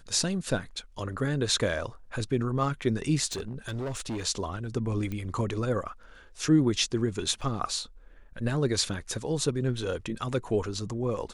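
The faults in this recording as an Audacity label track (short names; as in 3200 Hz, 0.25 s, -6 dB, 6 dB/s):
3.260000	4.230000	clipped -29.5 dBFS
5.120000	5.120000	pop -22 dBFS
7.410000	7.420000	gap 5.1 ms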